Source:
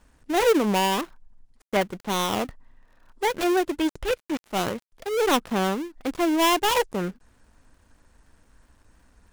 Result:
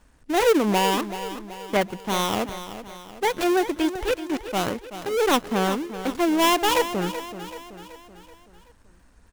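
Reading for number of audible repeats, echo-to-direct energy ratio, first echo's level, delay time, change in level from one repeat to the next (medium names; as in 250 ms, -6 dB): 4, -11.0 dB, -12.0 dB, 380 ms, -6.0 dB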